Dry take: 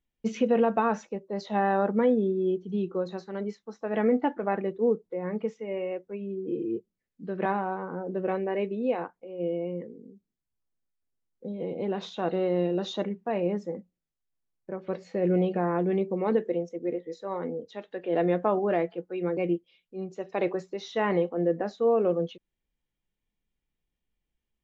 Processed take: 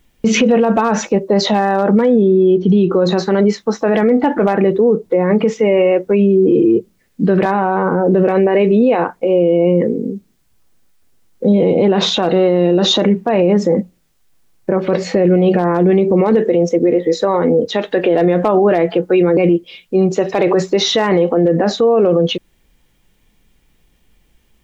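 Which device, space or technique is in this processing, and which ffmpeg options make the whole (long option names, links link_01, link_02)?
loud club master: -filter_complex "[0:a]asettb=1/sr,asplit=3[link_01][link_02][link_03];[link_01]atrim=end=2.224[link_04];[link_02]atrim=start=2.22:end=2.91,asetpts=PTS-STARTPTS,afade=type=in:duration=0.004:curve=qsin,afade=type=out:start_time=0.686:duration=0.004:curve=qsin,lowpass=frequency=5300:width=0.5412,lowpass=frequency=5300:width=1.3066[link_05];[link_03]atrim=start=2.906[link_06];[link_04][link_05]acrossfade=duration=0.004:curve1=hsin:curve2=qsin[link_07];[link_07][link_06]acrossfade=duration=0.004:curve1=qsin:curve2=hsin,acompressor=threshold=-27dB:ratio=2.5,asoftclip=type=hard:threshold=-20dB,alimiter=level_in=31.5dB:limit=-1dB:release=50:level=0:latency=1,volume=-4dB"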